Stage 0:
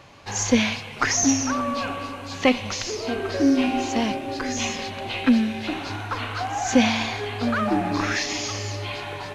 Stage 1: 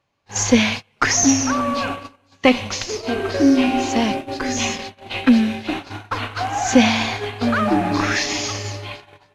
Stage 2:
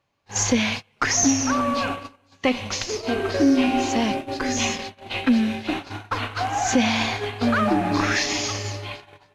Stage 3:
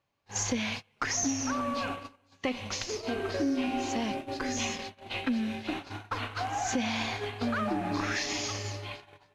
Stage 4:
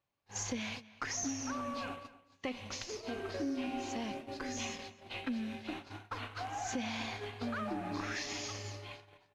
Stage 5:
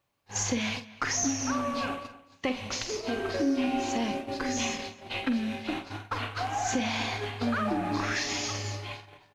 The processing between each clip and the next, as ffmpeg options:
-af "agate=range=0.0398:threshold=0.0355:ratio=16:detection=peak,volume=1.68"
-af "alimiter=limit=0.398:level=0:latency=1:release=252,volume=0.841"
-af "acompressor=threshold=0.0708:ratio=2,volume=0.473"
-filter_complex "[0:a]asplit=2[s0][s1];[s1]adelay=250.7,volume=0.126,highshelf=f=4000:g=-5.64[s2];[s0][s2]amix=inputs=2:normalize=0,volume=0.422"
-filter_complex "[0:a]asplit=2[s0][s1];[s1]adelay=47,volume=0.299[s2];[s0][s2]amix=inputs=2:normalize=0,volume=2.66"

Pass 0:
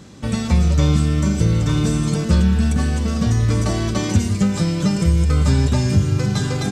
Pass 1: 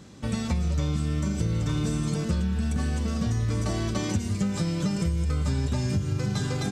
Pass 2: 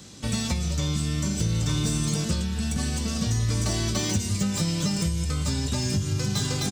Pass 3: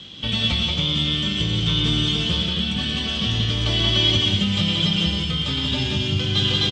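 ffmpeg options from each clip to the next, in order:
-af "acompressor=threshold=0.158:ratio=6,volume=0.501"
-filter_complex "[0:a]acrossover=split=340|800|3100[s0][s1][s2][s3];[s3]aeval=exprs='0.0473*sin(PI/2*2.24*val(0)/0.0473)':c=same[s4];[s0][s1][s2][s4]amix=inputs=4:normalize=0,asplit=2[s5][s6];[s6]adelay=19,volume=0.282[s7];[s5][s7]amix=inputs=2:normalize=0"
-af "lowpass=f=3200:t=q:w=14,aecho=1:1:116.6|180.8|271.1:0.355|0.708|0.447"

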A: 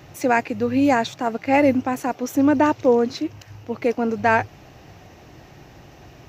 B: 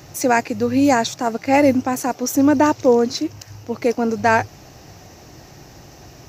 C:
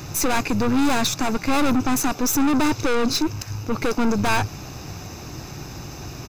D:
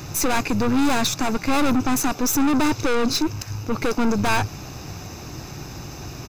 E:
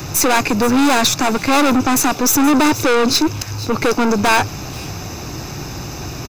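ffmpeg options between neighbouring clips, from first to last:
-af "highshelf=f=4100:t=q:w=1.5:g=7,volume=1.33"
-af "aeval=exprs='(tanh(20*val(0)+0.4)-tanh(0.4))/20':c=same,aecho=1:1:0.8:0.4,volume=2.37"
-af anull
-filter_complex "[0:a]acrossover=split=220|1400|2200[s0][s1][s2][s3];[s0]asoftclip=type=tanh:threshold=0.0282[s4];[s3]aecho=1:1:476:0.188[s5];[s4][s1][s2][s5]amix=inputs=4:normalize=0,volume=2.51"

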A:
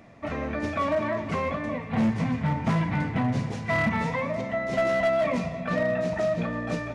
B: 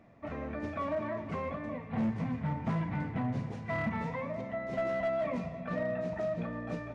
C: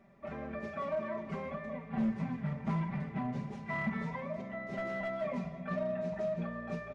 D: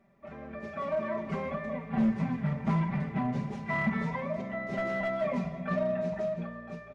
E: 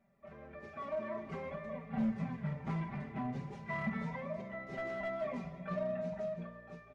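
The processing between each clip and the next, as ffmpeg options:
-af "highshelf=f=2800:g=-10.5,volume=0.422"
-af "aecho=1:1:5.1:0.92,volume=0.562"
-af "dynaudnorm=f=120:g=13:m=2.82,volume=0.668"
-af "flanger=delay=1.3:depth=1.7:regen=-58:speed=0.49:shape=triangular,volume=0.668"

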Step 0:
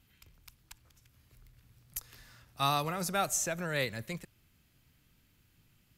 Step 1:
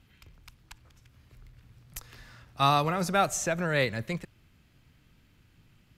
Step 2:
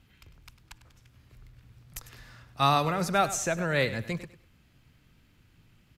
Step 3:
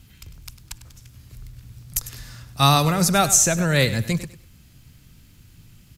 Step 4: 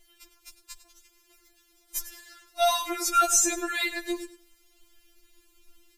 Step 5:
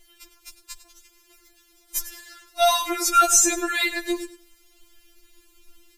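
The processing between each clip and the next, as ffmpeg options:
-af "aemphasis=mode=reproduction:type=50kf,volume=2.24"
-af "aecho=1:1:100|200|300:0.2|0.0519|0.0135"
-af "bass=f=250:g=8,treble=f=4000:g=14,volume=1.68"
-af "afftfilt=real='re*4*eq(mod(b,16),0)':imag='im*4*eq(mod(b,16),0)':win_size=2048:overlap=0.75,volume=0.668"
-af "bandreject=f=630:w=12,volume=1.78"

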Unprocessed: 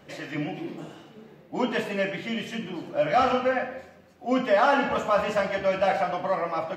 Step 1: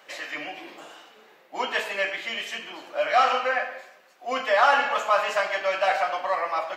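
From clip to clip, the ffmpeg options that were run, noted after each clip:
-af "highpass=820,volume=1.78"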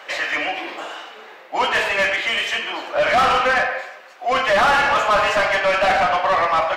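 -filter_complex "[0:a]asplit=2[s0][s1];[s1]highpass=f=720:p=1,volume=17.8,asoftclip=type=tanh:threshold=0.531[s2];[s0][s2]amix=inputs=2:normalize=0,lowpass=f=2400:p=1,volume=0.501,volume=0.75"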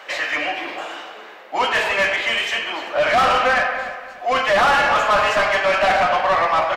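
-filter_complex "[0:a]asplit=2[s0][s1];[s1]adelay=290,lowpass=f=2500:p=1,volume=0.299,asplit=2[s2][s3];[s3]adelay=290,lowpass=f=2500:p=1,volume=0.32,asplit=2[s4][s5];[s5]adelay=290,lowpass=f=2500:p=1,volume=0.32[s6];[s0][s2][s4][s6]amix=inputs=4:normalize=0"

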